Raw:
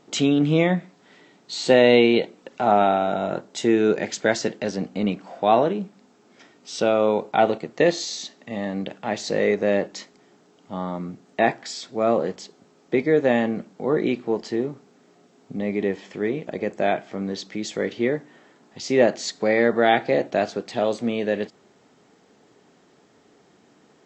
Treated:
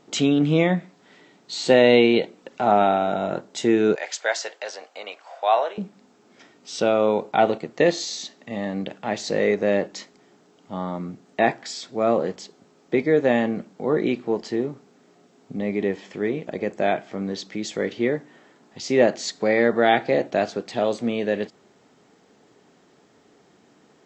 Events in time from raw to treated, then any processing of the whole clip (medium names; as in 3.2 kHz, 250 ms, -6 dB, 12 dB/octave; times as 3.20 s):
3.95–5.78 s: high-pass 600 Hz 24 dB/octave